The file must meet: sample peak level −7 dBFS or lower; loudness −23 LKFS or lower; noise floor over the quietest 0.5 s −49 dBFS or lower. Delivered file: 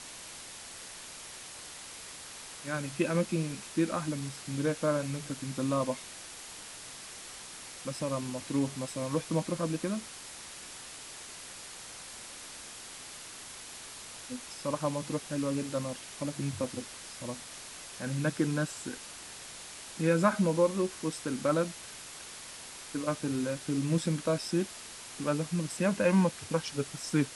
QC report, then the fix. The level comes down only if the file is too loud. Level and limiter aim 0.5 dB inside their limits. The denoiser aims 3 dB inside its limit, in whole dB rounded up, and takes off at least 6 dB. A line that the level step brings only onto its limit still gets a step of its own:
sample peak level −13.5 dBFS: in spec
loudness −34.0 LKFS: in spec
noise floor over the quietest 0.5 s −46 dBFS: out of spec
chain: broadband denoise 6 dB, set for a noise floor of −46 dBFS

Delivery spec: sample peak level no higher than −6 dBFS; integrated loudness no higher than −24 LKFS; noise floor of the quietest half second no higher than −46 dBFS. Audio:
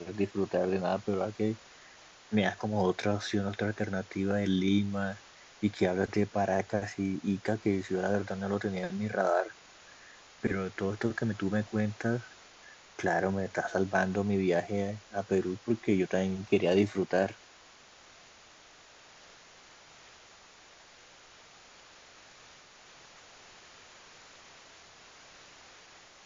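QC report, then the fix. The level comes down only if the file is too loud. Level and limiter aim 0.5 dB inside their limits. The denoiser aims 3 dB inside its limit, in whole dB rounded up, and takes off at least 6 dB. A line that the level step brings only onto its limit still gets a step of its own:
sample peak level −13.0 dBFS: in spec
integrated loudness −31.0 LKFS: in spec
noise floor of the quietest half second −56 dBFS: in spec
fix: no processing needed

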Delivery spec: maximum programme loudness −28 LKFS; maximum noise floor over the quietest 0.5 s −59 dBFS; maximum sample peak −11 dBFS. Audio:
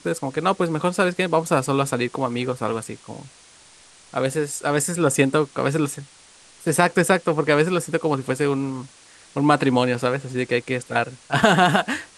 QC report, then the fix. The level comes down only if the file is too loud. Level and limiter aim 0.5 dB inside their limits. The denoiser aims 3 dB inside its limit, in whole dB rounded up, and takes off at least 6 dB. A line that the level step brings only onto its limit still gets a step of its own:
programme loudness −21.5 LKFS: out of spec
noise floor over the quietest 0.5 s −50 dBFS: out of spec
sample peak −2.0 dBFS: out of spec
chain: broadband denoise 6 dB, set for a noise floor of −50 dBFS
level −7 dB
brickwall limiter −11.5 dBFS

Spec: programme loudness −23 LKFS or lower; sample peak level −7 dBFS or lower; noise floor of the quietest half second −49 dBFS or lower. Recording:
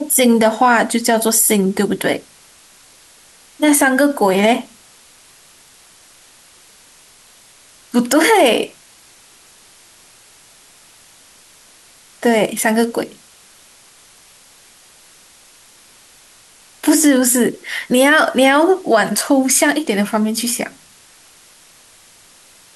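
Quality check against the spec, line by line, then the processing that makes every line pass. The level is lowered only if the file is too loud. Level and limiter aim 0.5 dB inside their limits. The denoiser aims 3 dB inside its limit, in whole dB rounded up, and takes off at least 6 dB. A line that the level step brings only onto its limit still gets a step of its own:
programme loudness −14.5 LKFS: out of spec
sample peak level −3.5 dBFS: out of spec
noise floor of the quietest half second −47 dBFS: out of spec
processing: level −9 dB

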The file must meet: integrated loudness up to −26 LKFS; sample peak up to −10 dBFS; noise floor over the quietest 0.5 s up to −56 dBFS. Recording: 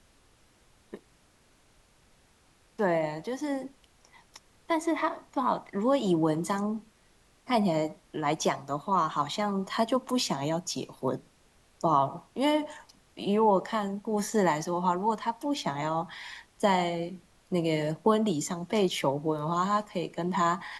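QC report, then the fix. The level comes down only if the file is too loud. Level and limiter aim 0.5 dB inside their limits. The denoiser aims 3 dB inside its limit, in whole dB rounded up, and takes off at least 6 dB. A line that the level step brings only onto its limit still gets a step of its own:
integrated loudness −29.0 LKFS: in spec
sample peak −11.5 dBFS: in spec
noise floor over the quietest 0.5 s −63 dBFS: in spec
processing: no processing needed

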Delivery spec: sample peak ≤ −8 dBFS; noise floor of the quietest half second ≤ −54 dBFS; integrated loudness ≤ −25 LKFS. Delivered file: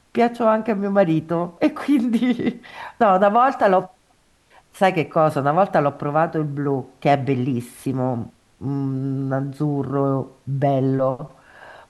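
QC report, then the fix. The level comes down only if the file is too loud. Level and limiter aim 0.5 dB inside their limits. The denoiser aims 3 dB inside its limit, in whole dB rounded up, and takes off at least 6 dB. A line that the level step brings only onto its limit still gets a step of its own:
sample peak −5.5 dBFS: out of spec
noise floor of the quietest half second −59 dBFS: in spec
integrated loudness −20.5 LKFS: out of spec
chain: level −5 dB

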